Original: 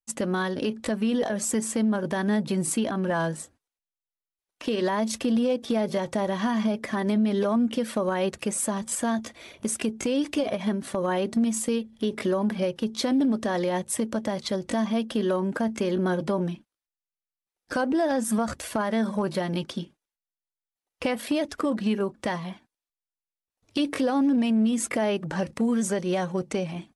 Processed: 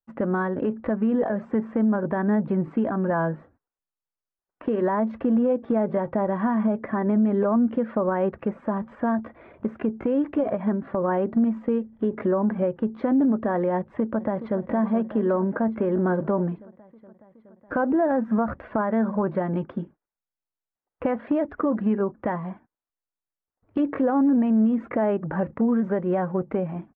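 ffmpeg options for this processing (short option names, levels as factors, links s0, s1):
-filter_complex "[0:a]asplit=2[s0][s1];[s1]afade=t=in:st=13.78:d=0.01,afade=t=out:st=14.61:d=0.01,aecho=0:1:420|840|1260|1680|2100|2520|2940|3360|3780|4200|4620|5040:0.237137|0.177853|0.13339|0.100042|0.0750317|0.0562738|0.0422054|0.031654|0.0237405|0.0178054|0.013354|0.0100155[s2];[s0][s2]amix=inputs=2:normalize=0,lowpass=f=1600:w=0.5412,lowpass=f=1600:w=1.3066,volume=1.33"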